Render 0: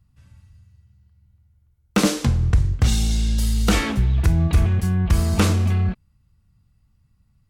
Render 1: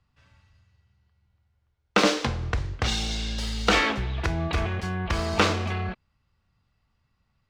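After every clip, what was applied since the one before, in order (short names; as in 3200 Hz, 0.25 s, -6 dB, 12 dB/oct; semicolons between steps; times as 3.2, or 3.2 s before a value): median filter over 3 samples; three-band isolator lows -15 dB, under 370 Hz, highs -19 dB, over 5700 Hz; gain +3.5 dB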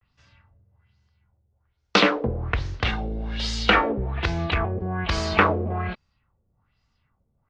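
vibrato 0.31 Hz 44 cents; LFO low-pass sine 1.2 Hz 450–6400 Hz; gain +1 dB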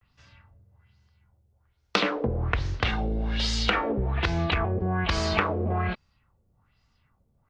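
compressor 6:1, threshold -24 dBFS, peak gain reduction 11.5 dB; gain +2.5 dB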